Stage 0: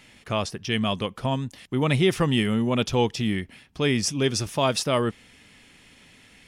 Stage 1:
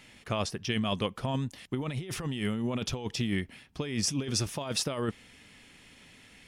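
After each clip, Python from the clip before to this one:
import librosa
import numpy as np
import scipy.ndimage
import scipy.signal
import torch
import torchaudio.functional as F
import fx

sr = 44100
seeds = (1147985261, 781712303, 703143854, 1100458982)

y = fx.over_compress(x, sr, threshold_db=-25.0, ratio=-0.5)
y = F.gain(torch.from_numpy(y), -5.0).numpy()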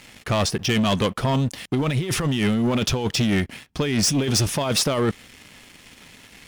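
y = fx.leveller(x, sr, passes=3)
y = F.gain(torch.from_numpy(y), 2.0).numpy()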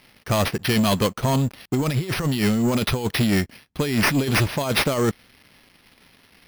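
y = fx.sample_hold(x, sr, seeds[0], rate_hz=7400.0, jitter_pct=0)
y = fx.upward_expand(y, sr, threshold_db=-36.0, expansion=1.5)
y = F.gain(torch.from_numpy(y), 1.5).numpy()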